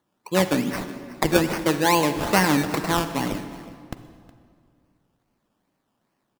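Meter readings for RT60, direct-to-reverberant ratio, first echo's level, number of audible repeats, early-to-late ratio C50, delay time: 2.2 s, 9.5 dB, -18.5 dB, 1, 9.5 dB, 0.366 s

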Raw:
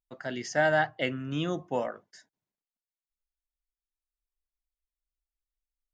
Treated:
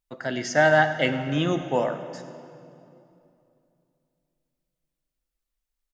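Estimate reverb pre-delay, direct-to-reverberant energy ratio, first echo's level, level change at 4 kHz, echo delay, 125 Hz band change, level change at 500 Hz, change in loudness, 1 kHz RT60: 39 ms, 9.0 dB, -16.5 dB, +6.5 dB, 0.104 s, +7.0 dB, +6.5 dB, +6.5 dB, 2.6 s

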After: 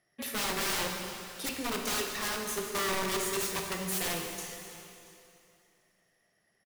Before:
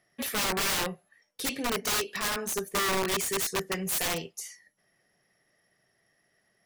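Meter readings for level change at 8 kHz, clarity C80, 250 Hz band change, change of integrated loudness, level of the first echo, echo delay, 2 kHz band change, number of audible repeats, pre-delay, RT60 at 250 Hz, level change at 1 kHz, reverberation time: -3.0 dB, 4.0 dB, -2.5 dB, -3.5 dB, -21.0 dB, 0.682 s, -3.0 dB, 1, 7 ms, 2.9 s, -3.0 dB, 2.8 s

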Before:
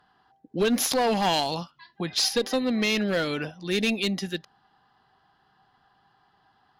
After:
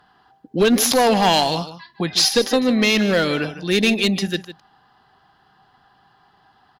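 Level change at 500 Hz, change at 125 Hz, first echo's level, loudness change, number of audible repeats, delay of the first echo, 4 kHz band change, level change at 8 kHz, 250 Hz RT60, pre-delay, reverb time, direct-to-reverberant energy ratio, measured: +7.5 dB, +8.0 dB, -13.5 dB, +8.0 dB, 1, 0.153 s, +7.5 dB, +7.5 dB, none, none, none, none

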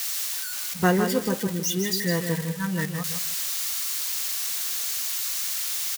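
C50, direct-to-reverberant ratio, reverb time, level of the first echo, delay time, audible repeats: none, none, none, -7.5 dB, 0.157 s, 3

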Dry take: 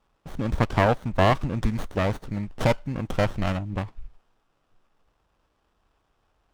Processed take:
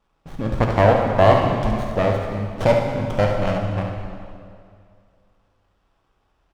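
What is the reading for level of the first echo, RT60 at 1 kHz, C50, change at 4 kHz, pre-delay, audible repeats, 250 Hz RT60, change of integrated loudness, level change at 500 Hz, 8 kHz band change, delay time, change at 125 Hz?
-7.5 dB, 2.3 s, 2.0 dB, +2.0 dB, 10 ms, 1, 2.5 s, +6.0 dB, +8.5 dB, n/a, 70 ms, +4.5 dB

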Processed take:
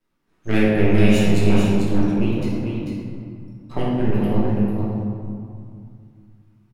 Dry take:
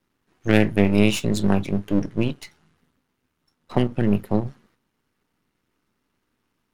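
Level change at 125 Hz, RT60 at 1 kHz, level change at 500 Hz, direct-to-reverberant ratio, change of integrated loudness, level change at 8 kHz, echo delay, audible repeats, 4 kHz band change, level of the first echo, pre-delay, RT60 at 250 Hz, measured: +4.0 dB, 2.3 s, +2.5 dB, -9.0 dB, +1.5 dB, n/a, 0.443 s, 1, -0.5 dB, -5.5 dB, 3 ms, 2.9 s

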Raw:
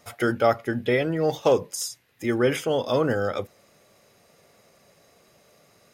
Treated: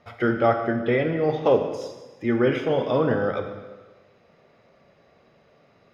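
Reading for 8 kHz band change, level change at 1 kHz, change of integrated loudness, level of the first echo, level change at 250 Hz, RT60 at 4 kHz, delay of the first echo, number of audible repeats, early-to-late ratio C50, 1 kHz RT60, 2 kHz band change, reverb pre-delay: under -15 dB, +1.5 dB, +1.5 dB, none, +2.5 dB, 1.2 s, none, none, 6.5 dB, 1.2 s, 0.0 dB, 5 ms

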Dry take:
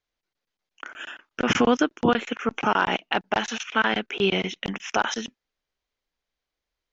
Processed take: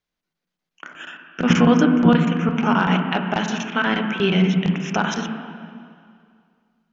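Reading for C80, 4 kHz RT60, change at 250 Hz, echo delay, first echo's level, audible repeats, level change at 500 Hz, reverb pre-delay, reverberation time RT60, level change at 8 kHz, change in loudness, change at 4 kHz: 7.0 dB, 2.1 s, +9.5 dB, none, none, none, +2.0 dB, 6 ms, 2.2 s, n/a, +5.5 dB, +0.5 dB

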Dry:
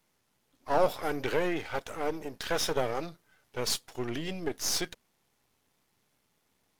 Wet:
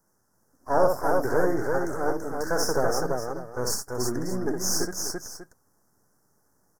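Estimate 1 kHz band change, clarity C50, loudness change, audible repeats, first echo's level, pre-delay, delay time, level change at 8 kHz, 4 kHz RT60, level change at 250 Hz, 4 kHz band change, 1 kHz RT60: +5.5 dB, none, +5.0 dB, 3, -5.0 dB, none, 64 ms, +6.0 dB, none, +6.5 dB, 0.0 dB, none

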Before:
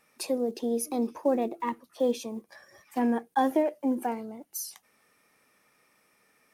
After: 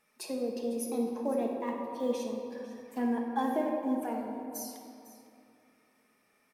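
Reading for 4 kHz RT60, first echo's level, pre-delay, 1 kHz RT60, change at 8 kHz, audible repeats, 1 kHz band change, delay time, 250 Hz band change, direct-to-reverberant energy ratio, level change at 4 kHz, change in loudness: 1.7 s, -17.0 dB, 5 ms, 2.6 s, -5.5 dB, 1, -4.5 dB, 0.503 s, -3.0 dB, 0.0 dB, -5.0 dB, -4.0 dB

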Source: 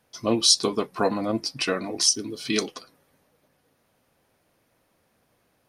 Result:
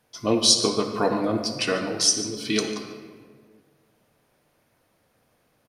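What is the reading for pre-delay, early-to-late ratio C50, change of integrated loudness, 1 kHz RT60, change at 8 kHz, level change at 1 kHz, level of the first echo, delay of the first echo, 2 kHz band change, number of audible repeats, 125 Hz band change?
7 ms, 6.0 dB, +1.0 dB, 1.5 s, +1.0 dB, +1.5 dB, -17.0 dB, 0.145 s, +1.5 dB, 1, +2.5 dB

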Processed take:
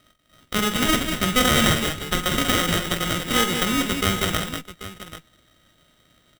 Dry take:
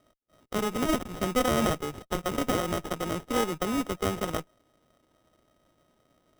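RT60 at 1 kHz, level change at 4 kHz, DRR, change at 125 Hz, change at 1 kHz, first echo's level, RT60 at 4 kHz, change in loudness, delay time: none, +15.5 dB, none, +8.5 dB, +6.0 dB, -9.5 dB, none, +8.0 dB, 47 ms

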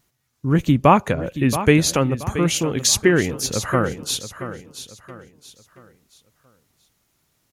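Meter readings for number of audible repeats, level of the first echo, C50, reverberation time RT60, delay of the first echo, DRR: 3, -12.0 dB, none, none, 0.677 s, none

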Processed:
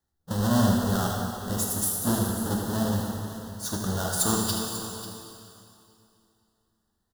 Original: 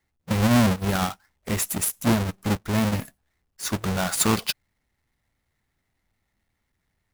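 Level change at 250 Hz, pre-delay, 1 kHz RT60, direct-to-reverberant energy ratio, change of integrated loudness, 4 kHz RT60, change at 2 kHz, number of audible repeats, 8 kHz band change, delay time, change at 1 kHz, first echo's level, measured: -2.5 dB, 5 ms, 2.7 s, -1.5 dB, -3.0 dB, 2.5 s, -7.0 dB, 2, -0.5 dB, 78 ms, -2.5 dB, -9.0 dB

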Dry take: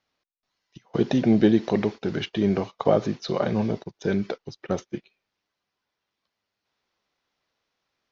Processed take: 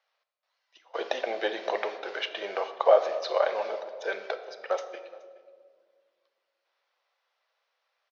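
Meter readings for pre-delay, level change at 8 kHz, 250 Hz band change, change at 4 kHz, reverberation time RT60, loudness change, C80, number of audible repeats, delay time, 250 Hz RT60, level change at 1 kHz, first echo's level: 3 ms, n/a, -24.5 dB, 0.0 dB, 1.8 s, -4.5 dB, 11.5 dB, 1, 0.423 s, 2.6 s, +2.5 dB, -22.5 dB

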